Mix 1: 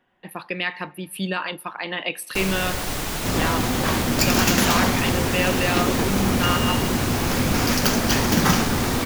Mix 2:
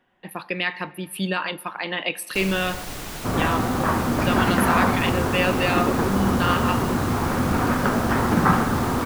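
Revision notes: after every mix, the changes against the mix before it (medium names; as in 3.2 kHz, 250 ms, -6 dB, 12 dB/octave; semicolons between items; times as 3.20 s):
speech: send +7.5 dB; first sound -6.5 dB; second sound: add resonant low-pass 1.3 kHz, resonance Q 1.7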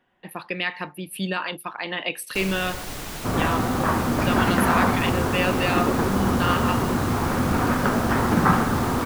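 reverb: off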